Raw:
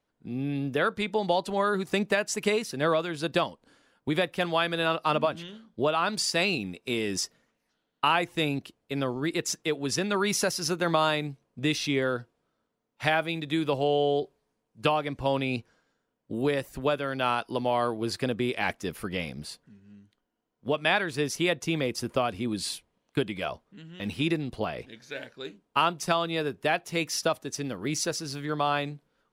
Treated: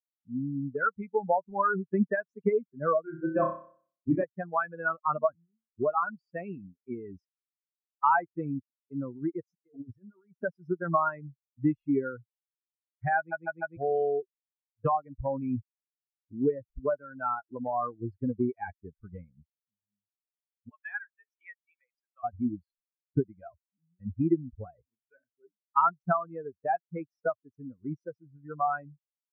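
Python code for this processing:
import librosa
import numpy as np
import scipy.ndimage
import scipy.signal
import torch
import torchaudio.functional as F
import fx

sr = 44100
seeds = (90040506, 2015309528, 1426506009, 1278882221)

y = fx.room_flutter(x, sr, wall_m=5.3, rt60_s=1.3, at=(3.03, 4.24))
y = fx.over_compress(y, sr, threshold_db=-36.0, ratio=-1.0, at=(9.63, 10.43))
y = fx.highpass(y, sr, hz=1400.0, slope=12, at=(20.69, 22.24))
y = fx.edit(y, sr, fx.stutter_over(start_s=13.17, slice_s=0.15, count=4), tone=tone)
y = fx.bin_expand(y, sr, power=3.0)
y = scipy.signal.sosfilt(scipy.signal.ellip(4, 1.0, 60, 1500.0, 'lowpass', fs=sr, output='sos'), y)
y = fx.dynamic_eq(y, sr, hz=540.0, q=1.7, threshold_db=-45.0, ratio=4.0, max_db=-5)
y = y * librosa.db_to_amplitude(8.5)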